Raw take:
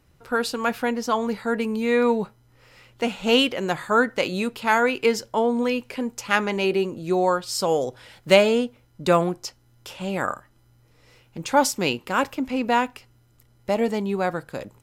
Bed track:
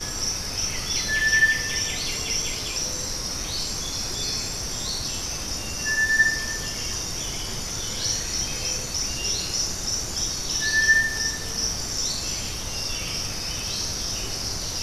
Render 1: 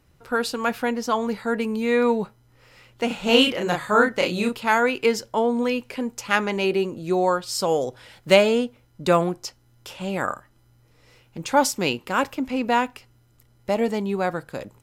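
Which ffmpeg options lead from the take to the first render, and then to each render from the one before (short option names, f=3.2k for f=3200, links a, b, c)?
-filter_complex "[0:a]asettb=1/sr,asplit=3[a][b][c];[a]atrim=end=3.074[d];[b]atrim=start=3.07:end=4.58,asetpts=PTS-STARTPTS,afade=t=in:d=0.004:c=qsin,afade=t=out:st=1.506:d=0.004:c=qsin,asplit=2[e][f];[f]adelay=34,volume=-3dB[g];[e][g]amix=inputs=2:normalize=0,atrim=end_sample=66591[h];[c]atrim=start=4.576[i];[d][h]acrossfade=d=0.004:c1=hsin:c2=qsin[j];[j][i]acrossfade=d=0.004:c1=qsin:c2=hsin"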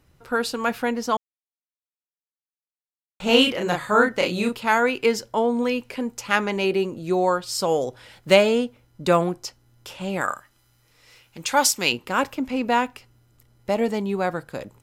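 -filter_complex "[0:a]asettb=1/sr,asplit=3[a][b][c];[a]atrim=end=10.214[d];[b]atrim=start=10.21:end=11.92,asetpts=PTS-STARTPTS,afade=t=in:d=0.004:c=qsin,afade=t=out:st=1.706:d=0.004:c=qsin,tiltshelf=f=970:g=-6.5[e];[c]atrim=start=11.916[f];[d][e]acrossfade=d=0.004:c1=hsin:c2=qsin[g];[g][f]acrossfade=d=0.004:c1=qsin:c2=hsin,asplit=3[h][i][j];[h]atrim=end=1.17,asetpts=PTS-STARTPTS,afade=t=out:st=1.166:d=0.004:c=hsin[k];[i]atrim=start=1.17:end=3.2,asetpts=PTS-STARTPTS,volume=0[l];[j]atrim=start=3.2,asetpts=PTS-STARTPTS,afade=t=in:d=0.004:c=hsin[m];[k][l][m]concat=n=3:v=0:a=1"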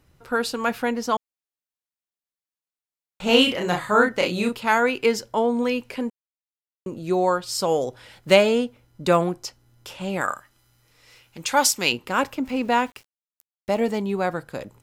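-filter_complex "[0:a]asettb=1/sr,asplit=3[a][b][c];[a]atrim=end=3.454[d];[b]atrim=start=3.45:end=3.92,asetpts=PTS-STARTPTS,afade=t=in:d=0.004:c=qsin,afade=t=out:st=0.466:d=0.004:c=qsin,asplit=2[e][f];[f]adelay=33,volume=-9.5dB[g];[e][g]amix=inputs=2:normalize=0,atrim=end_sample=20727[h];[c]atrim=start=3.916[i];[d][h]acrossfade=d=0.004:c1=hsin:c2=qsin[j];[j][i]acrossfade=d=0.004:c1=qsin:c2=hsin,asettb=1/sr,asplit=3[k][l][m];[k]atrim=end=12.454[n];[l]atrim=start=12.45:end=13.99,asetpts=PTS-STARTPTS,afade=t=in:d=0.004:c=qsin,afade=t=out:st=1.536:d=0.004:c=qsin,aeval=exprs='val(0)*gte(abs(val(0)),0.00501)':c=same[o];[m]atrim=start=13.986[p];[n][o]acrossfade=d=0.004:c1=hsin:c2=qsin[q];[q][p]acrossfade=d=0.004:c1=qsin:c2=hsin,asplit=3[r][s][t];[r]atrim=end=6.1,asetpts=PTS-STARTPTS,afade=t=out:st=6.096:d=0.004:c=hsin[u];[s]atrim=start=6.1:end=6.86,asetpts=PTS-STARTPTS,volume=0[v];[t]atrim=start=6.86,asetpts=PTS-STARTPTS,afade=t=in:d=0.004:c=hsin[w];[u][v][w]concat=n=3:v=0:a=1"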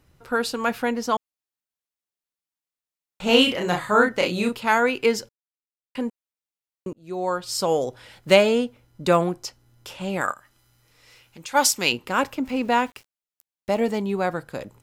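-filter_complex "[0:a]asplit=3[a][b][c];[a]afade=t=out:st=10.31:d=0.02[d];[b]acompressor=threshold=-48dB:ratio=1.5:attack=3.2:release=140:knee=1:detection=peak,afade=t=in:st=10.31:d=0.02,afade=t=out:st=11.54:d=0.02[e];[c]afade=t=in:st=11.54:d=0.02[f];[d][e][f]amix=inputs=3:normalize=0,asplit=4[g][h][i][j];[g]atrim=end=5.29,asetpts=PTS-STARTPTS,afade=t=out:st=5.286:d=0.004:c=hsin[k];[h]atrim=start=5.29:end=5.95,asetpts=PTS-STARTPTS,volume=0[l];[i]atrim=start=5.95:end=6.93,asetpts=PTS-STARTPTS,afade=t=in:d=0.004:c=hsin,afade=t=out:st=0.976:d=0.004:c=hsin[m];[j]atrim=start=6.93,asetpts=PTS-STARTPTS,afade=t=in:d=0.59[n];[k][l][m][n]concat=n=4:v=0:a=1"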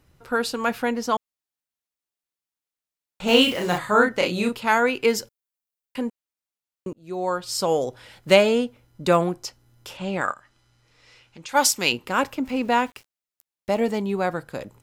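-filter_complex "[0:a]asplit=3[a][b][c];[a]afade=t=out:st=3.27:d=0.02[d];[b]acrusher=bits=5:mix=0:aa=0.5,afade=t=in:st=3.27:d=0.02,afade=t=out:st=3.77:d=0.02[e];[c]afade=t=in:st=3.77:d=0.02[f];[d][e][f]amix=inputs=3:normalize=0,asettb=1/sr,asplit=3[g][h][i];[g]atrim=end=5.084[j];[h]atrim=start=5.08:end=6,asetpts=PTS-STARTPTS,afade=t=in:d=0.004:c=qsin,afade=t=out:st=0.916:d=0.004:c=qsin,highshelf=f=9.9k:g=10[k];[i]atrim=start=5.996[l];[j][k]acrossfade=d=0.004:c1=hsin:c2=qsin[m];[m][l]acrossfade=d=0.004:c1=qsin:c2=hsin,asettb=1/sr,asplit=3[n][o][p];[n]atrim=end=9.974[q];[o]atrim=start=9.97:end=11.49,asetpts=PTS-STARTPTS,afade=t=in:d=0.004:c=qsin,afade=t=out:st=1.516:d=0.004:c=qsin,lowpass=6.4k[r];[p]atrim=start=11.486[s];[q][r]acrossfade=d=0.004:c1=hsin:c2=qsin[t];[t][s]acrossfade=d=0.004:c1=qsin:c2=hsin"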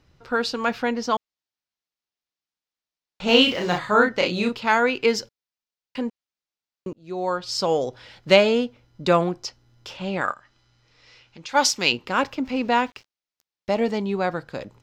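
-af "highshelf=f=7.3k:t=q:w=1.5:g=-12"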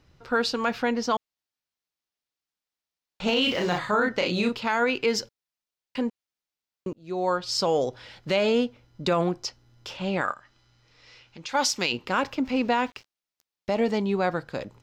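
-af "alimiter=limit=-14dB:level=0:latency=1:release=62"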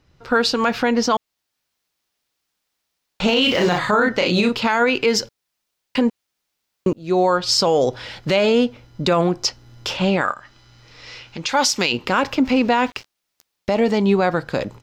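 -af "dynaudnorm=f=180:g=3:m=14dB,alimiter=limit=-8dB:level=0:latency=1:release=144"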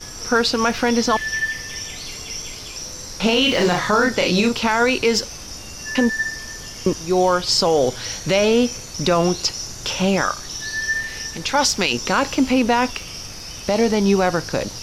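-filter_complex "[1:a]volume=-4.5dB[a];[0:a][a]amix=inputs=2:normalize=0"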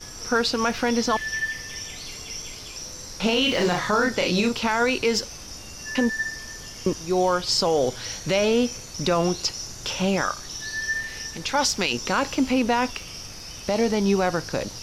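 -af "volume=-4.5dB"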